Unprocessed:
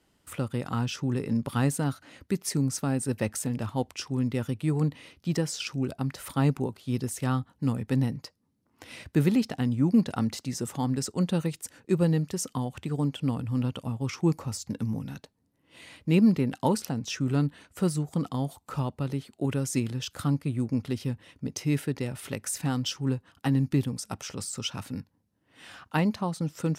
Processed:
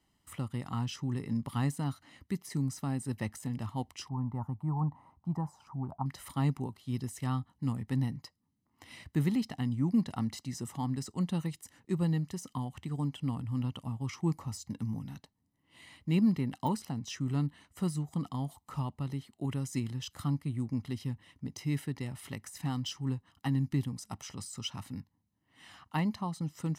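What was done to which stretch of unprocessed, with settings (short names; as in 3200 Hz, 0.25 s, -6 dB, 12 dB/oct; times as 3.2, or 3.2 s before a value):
4.09–6.06 EQ curve 180 Hz 0 dB, 290 Hz -5 dB, 490 Hz -6 dB, 900 Hz +13 dB, 1900 Hz -17 dB, 3200 Hz -29 dB, 12000 Hz -17 dB
whole clip: de-esser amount 65%; comb 1 ms, depth 54%; gain -7.5 dB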